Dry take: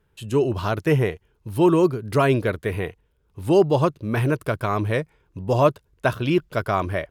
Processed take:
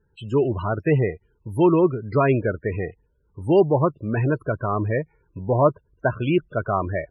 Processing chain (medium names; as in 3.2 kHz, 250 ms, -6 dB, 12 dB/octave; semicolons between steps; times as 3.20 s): 4.52–6.12 s: low-pass that closes with the level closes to 2.1 kHz, closed at -15 dBFS; loudest bins only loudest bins 32